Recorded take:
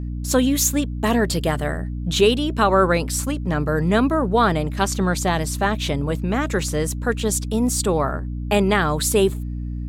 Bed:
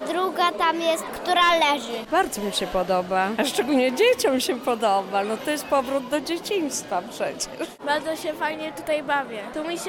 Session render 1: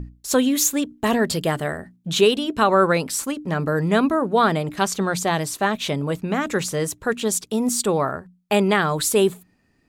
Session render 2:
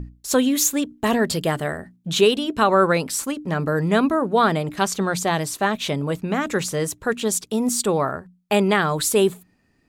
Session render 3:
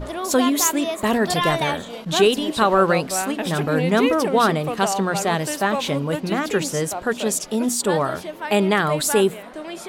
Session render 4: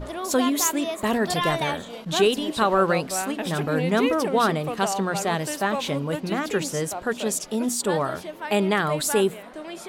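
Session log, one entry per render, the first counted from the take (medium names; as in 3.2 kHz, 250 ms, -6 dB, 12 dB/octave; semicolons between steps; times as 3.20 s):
hum notches 60/120/180/240/300 Hz
no audible change
add bed -4.5 dB
trim -3.5 dB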